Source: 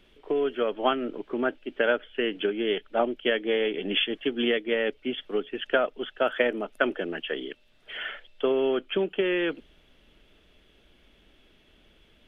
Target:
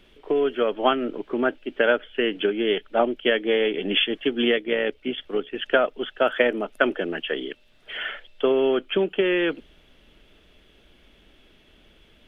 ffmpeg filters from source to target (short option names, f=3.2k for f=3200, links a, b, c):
-filter_complex "[0:a]asettb=1/sr,asplit=3[a][b][c];[a]atrim=end=4.564[d];[b]atrim=start=4.56:end=5.57,asetpts=PTS-STARTPTS,afade=t=in:d=0.004:c=qsin,afade=t=out:st=1.006:d=0.004:c=qsin,tremolo=f=66:d=0.4[e];[c]atrim=start=5.566[f];[d][e]acrossfade=d=0.004:c1=hsin:c2=qsin[g];[g][f]acrossfade=d=0.004:c1=qsin:c2=hsin,volume=4dB"